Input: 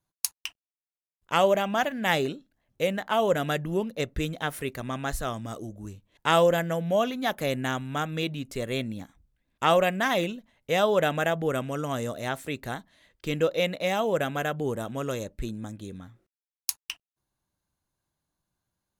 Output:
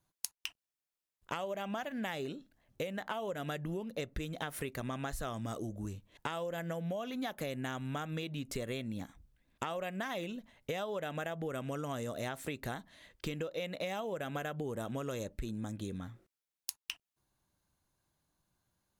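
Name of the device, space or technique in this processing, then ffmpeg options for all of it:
serial compression, peaks first: -af "acompressor=threshold=-31dB:ratio=6,acompressor=threshold=-39dB:ratio=3,volume=2.5dB"

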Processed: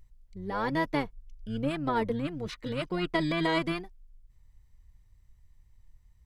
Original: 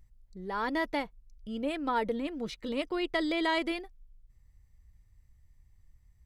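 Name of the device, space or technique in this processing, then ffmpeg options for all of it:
octave pedal: -filter_complex "[0:a]asettb=1/sr,asplit=3[a][b][c];[a]atrim=end=0.934[d];[b]atrim=start=0.93:end=1.7,asetpts=PTS-STARTPTS,afade=t=in:d=0.004:c=qsin,afade=t=out:st=0.766:d=0.004:c=qsin,lowshelf=f=170:g=5[e];[c]atrim=start=1.696[f];[d][e]acrossfade=d=0.004:c1=hsin:c2=qsin[g];[g][f]acrossfade=d=0.004:c1=qsin:c2=hsin,asplit=2[h][i];[i]asetrate=22050,aresample=44100,atempo=2,volume=-4dB[j];[h][j]amix=inputs=2:normalize=0"

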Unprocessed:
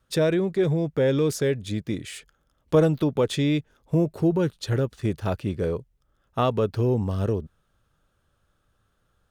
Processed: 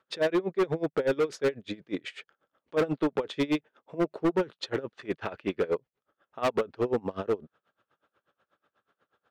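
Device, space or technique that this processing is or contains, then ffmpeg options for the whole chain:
helicopter radio: -filter_complex "[0:a]asettb=1/sr,asplit=3[a][b][c];[a]atrim=end=5.054[d];[b]atrim=start=5.05:end=5.68,asetpts=PTS-STARTPTS,afade=t=in:d=0.004:c=qsin,afade=t=out:st=0.626:d=0.004:c=qsin,equalizer=f=2.2k:w=0.86:g=5.5[e];[c]atrim=start=5.676[f];[d][e]acrossfade=d=0.004:c1=hsin:c2=qsin[g];[g][f]acrossfade=d=0.004:c1=qsin:c2=hsin,highpass=350,lowpass=2.8k,aeval=exprs='val(0)*pow(10,-25*(0.5-0.5*cos(2*PI*8.2*n/s))/20)':c=same,asoftclip=type=hard:threshold=-28dB,volume=7.5dB"

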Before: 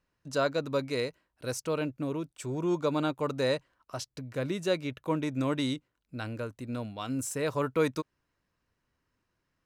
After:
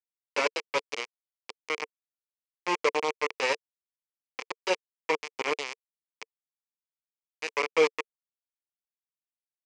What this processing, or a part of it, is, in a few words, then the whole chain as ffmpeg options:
hand-held game console: -af "acrusher=bits=3:mix=0:aa=0.000001,highpass=430,equalizer=f=450:t=q:w=4:g=9,equalizer=f=650:t=q:w=4:g=-6,equalizer=f=1k:t=q:w=4:g=4,equalizer=f=1.5k:t=q:w=4:g=-8,equalizer=f=2.3k:t=q:w=4:g=9,equalizer=f=3.8k:t=q:w=4:g=-9,lowpass=f=5.9k:w=0.5412,lowpass=f=5.9k:w=1.3066"

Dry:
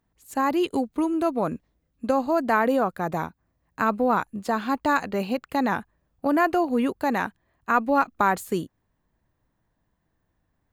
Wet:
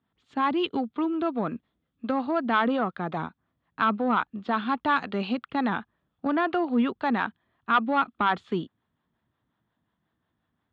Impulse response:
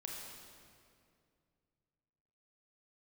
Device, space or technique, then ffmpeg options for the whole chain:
guitar amplifier with harmonic tremolo: -filter_complex "[0:a]acrossover=split=440[a][b];[a]aeval=exprs='val(0)*(1-0.5/2+0.5/2*cos(2*PI*5.6*n/s))':c=same[c];[b]aeval=exprs='val(0)*(1-0.5/2-0.5/2*cos(2*PI*5.6*n/s))':c=same[d];[c][d]amix=inputs=2:normalize=0,asoftclip=type=tanh:threshold=-14.5dB,highpass=100,equalizer=f=230:t=q:w=4:g=4,equalizer=f=540:t=q:w=4:g=-4,equalizer=f=1.3k:t=q:w=4:g=6,equalizer=f=3.4k:t=q:w=4:g=10,lowpass=f=3.8k:w=0.5412,lowpass=f=3.8k:w=1.3066,asettb=1/sr,asplit=3[e][f][g];[e]atrim=end=4.974[h];[f]atrim=start=4.97:end=5.41,asetpts=PTS-STARTPTS,afade=t=in:d=0.004:c=qsin,afade=t=out:st=0.436:d=0.004:c=qsin,aemphasis=mode=production:type=50fm[i];[g]atrim=start=5.406[j];[h][i]acrossfade=d=0.004:c1=hsin:c2=qsin[k];[k][j]acrossfade=d=0.004:c1=qsin:c2=hsin"

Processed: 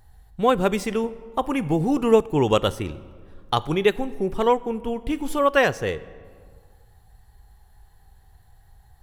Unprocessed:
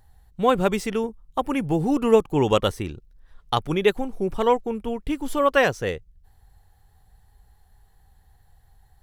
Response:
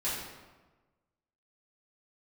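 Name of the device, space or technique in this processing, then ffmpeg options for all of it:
ducked reverb: -filter_complex "[0:a]asplit=3[a][b][c];[1:a]atrim=start_sample=2205[d];[b][d]afir=irnorm=-1:irlink=0[e];[c]apad=whole_len=397876[f];[e][f]sidechaincompress=threshold=-33dB:ratio=5:attack=36:release=733,volume=-8dB[g];[a][g]amix=inputs=2:normalize=0"

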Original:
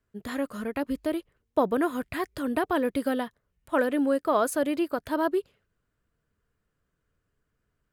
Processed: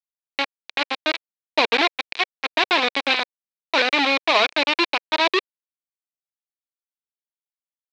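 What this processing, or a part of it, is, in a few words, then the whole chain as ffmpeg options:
hand-held game console: -af "acrusher=bits=3:mix=0:aa=0.000001,highpass=460,equalizer=f=550:t=q:w=4:g=-5,equalizer=f=1.3k:t=q:w=4:g=-4,equalizer=f=2.4k:t=q:w=4:g=9,equalizer=f=3.9k:t=q:w=4:g=9,lowpass=f=4.5k:w=0.5412,lowpass=f=4.5k:w=1.3066,volume=6dB"

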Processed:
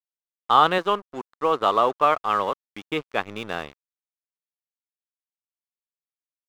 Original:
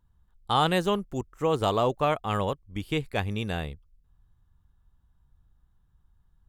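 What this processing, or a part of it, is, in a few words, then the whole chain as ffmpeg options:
pocket radio on a weak battery: -filter_complex "[0:a]asettb=1/sr,asplit=3[a][b][c];[a]atrim=end=0.784[d];[b]atrim=start=0.78:end=2.83,asetpts=PTS-STARTPTS,afade=t=in:d=0.004:c=qsin,afade=t=out:st=2.046:d=0.004:c=qsin,highpass=f=260:p=1[e];[c]atrim=start=2.826[f];[d][e]acrossfade=d=0.004:c1=hsin:c2=qsin[g];[g][f]acrossfade=d=0.004:c1=qsin:c2=hsin,highpass=270,lowpass=3.8k,aeval=exprs='sgn(val(0))*max(abs(val(0))-0.00596,0)':c=same,equalizer=f=1.2k:t=o:w=0.54:g=8,volume=4dB"

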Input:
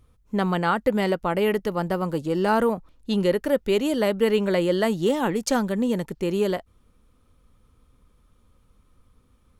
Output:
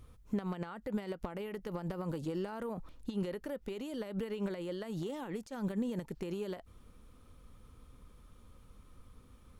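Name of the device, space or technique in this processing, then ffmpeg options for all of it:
de-esser from a sidechain: -filter_complex "[0:a]asplit=2[a][b];[b]highpass=f=5.4k:p=1,apad=whole_len=423255[c];[a][c]sidechaincompress=threshold=-56dB:ratio=8:attack=0.67:release=52,volume=2.5dB"

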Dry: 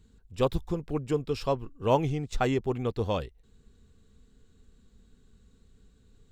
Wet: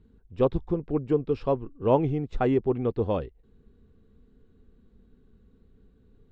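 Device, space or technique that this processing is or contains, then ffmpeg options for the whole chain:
phone in a pocket: -af "lowpass=3.5k,equalizer=f=340:t=o:w=1.6:g=5.5,highshelf=f=2.2k:g=-9"

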